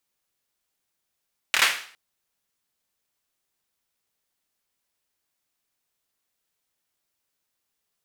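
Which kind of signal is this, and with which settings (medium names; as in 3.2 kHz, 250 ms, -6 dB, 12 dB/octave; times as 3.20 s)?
hand clap length 0.41 s, bursts 4, apart 26 ms, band 2 kHz, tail 0.48 s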